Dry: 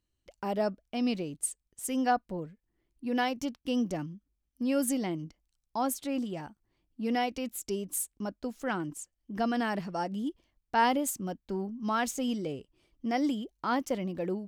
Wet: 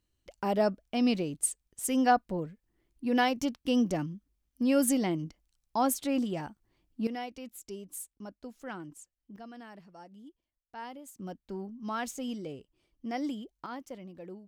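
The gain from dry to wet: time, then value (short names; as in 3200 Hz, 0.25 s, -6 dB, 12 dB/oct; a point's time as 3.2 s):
+3 dB
from 7.07 s -8.5 dB
from 9.36 s -17.5 dB
from 11.19 s -5 dB
from 13.66 s -12 dB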